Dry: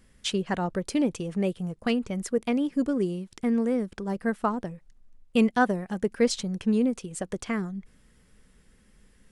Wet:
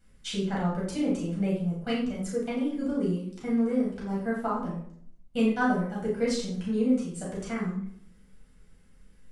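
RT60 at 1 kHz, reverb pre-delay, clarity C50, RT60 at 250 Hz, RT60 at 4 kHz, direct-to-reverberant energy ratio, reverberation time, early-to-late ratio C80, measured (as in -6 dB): 0.60 s, 6 ms, 3.0 dB, 0.90 s, 0.45 s, -6.5 dB, 0.65 s, 7.5 dB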